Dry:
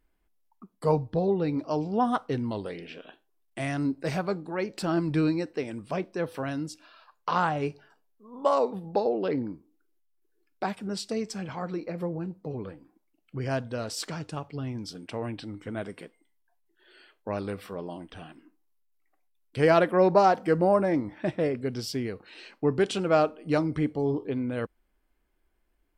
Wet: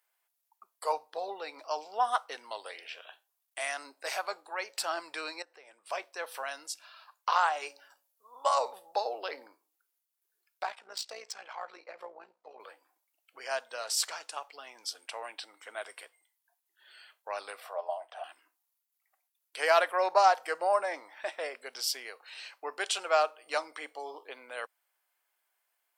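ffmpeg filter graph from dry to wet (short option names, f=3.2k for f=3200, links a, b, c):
-filter_complex "[0:a]asettb=1/sr,asplit=3[a][b][c];[a]atrim=end=5.424[d];[b]atrim=start=5.42:end=5.86,asetpts=PTS-STARTPTS,afade=t=in:d=0.004:c=qsin,afade=t=out:st=0.436:d=0.004:c=qsin,highshelf=f=2.6k:g=-10.5,acompressor=threshold=-45dB:ratio=2.5:attack=3.2:release=140:knee=1:detection=peak[e];[c]atrim=start=5.856[f];[d][e]acrossfade=d=0.004:c1=hsin:c2=qsin[g];[g][f]acrossfade=d=0.004:c1=qsin:c2=hsin,asettb=1/sr,asplit=3[h][i][j];[h]atrim=end=7.534[k];[i]atrim=start=7.53:end=9.47,asetpts=PTS-STARTPTS,afade=t=in:d=0.004:c=qsin,afade=t=out:st=1.936:d=0.004:c=qsin,highpass=170,bass=f=250:g=5,treble=f=4k:g=4,bandreject=f=282.5:t=h:w=4,bandreject=f=565:t=h:w=4,bandreject=f=847.5:t=h:w=4[l];[j]atrim=start=9.466[m];[k][l]acrossfade=d=0.004:c1=hsin:c2=qsin[n];[n][m]acrossfade=d=0.004:c1=qsin:c2=hsin,asettb=1/sr,asplit=3[o][p][q];[o]atrim=end=10.634[r];[p]atrim=start=10.63:end=12.6,asetpts=PTS-STARTPTS,afade=t=in:d=0.004:c=qsin,afade=t=out:st=1.966:d=0.004:c=qsin,adynamicsmooth=sensitivity=5:basefreq=4.5k,tremolo=f=58:d=0.621[s];[q]atrim=start=12.596[t];[r][s]acrossfade=d=0.004:c1=hsin:c2=qsin[u];[u][t]acrossfade=d=0.004:c1=qsin:c2=hsin,asettb=1/sr,asplit=3[v][w][x];[v]atrim=end=17.604[y];[w]atrim=start=17.6:end=18.24,asetpts=PTS-STARTPTS,afade=t=in:d=0.004:c=qsin,afade=t=out:st=0.636:d=0.004:c=qsin,highpass=f=650:t=q:w=5.3,highshelf=f=2k:g=-10[z];[x]atrim=start=18.236[aa];[y][z]acrossfade=d=0.004:c1=hsin:c2=qsin[ab];[ab][aa]acrossfade=d=0.004:c1=qsin:c2=hsin,highpass=f=670:w=0.5412,highpass=f=670:w=1.3066,highshelf=f=5.5k:g=10"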